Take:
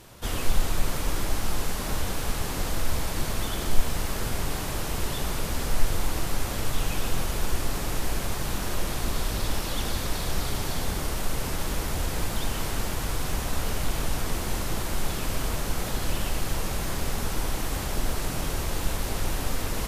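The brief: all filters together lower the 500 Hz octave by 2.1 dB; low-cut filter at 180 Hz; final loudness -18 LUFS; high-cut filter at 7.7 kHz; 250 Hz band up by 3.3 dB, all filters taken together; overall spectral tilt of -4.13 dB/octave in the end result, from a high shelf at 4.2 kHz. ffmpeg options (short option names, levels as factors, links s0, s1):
-af "highpass=180,lowpass=7700,equalizer=f=250:t=o:g=7.5,equalizer=f=500:t=o:g=-5,highshelf=f=4200:g=-5.5,volume=5.96"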